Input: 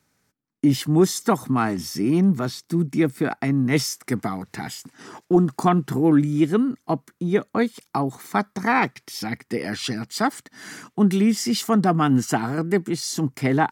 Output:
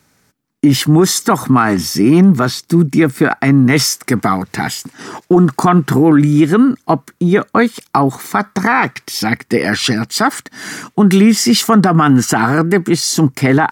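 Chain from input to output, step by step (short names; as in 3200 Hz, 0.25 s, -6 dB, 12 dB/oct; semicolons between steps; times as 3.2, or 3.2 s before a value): dynamic EQ 1400 Hz, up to +7 dB, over -37 dBFS, Q 1.1; maximiser +13 dB; gain -1 dB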